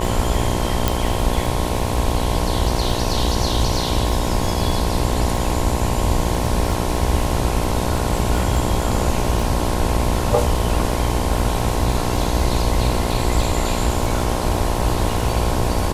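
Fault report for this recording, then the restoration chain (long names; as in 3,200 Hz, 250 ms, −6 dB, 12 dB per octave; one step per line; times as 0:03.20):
mains buzz 60 Hz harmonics 18 −24 dBFS
surface crackle 29 per second −25 dBFS
0:00.88: click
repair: click removal
hum removal 60 Hz, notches 18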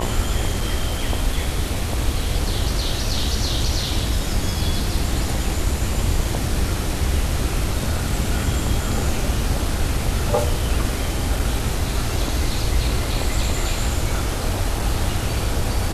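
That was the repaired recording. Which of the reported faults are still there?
0:00.88: click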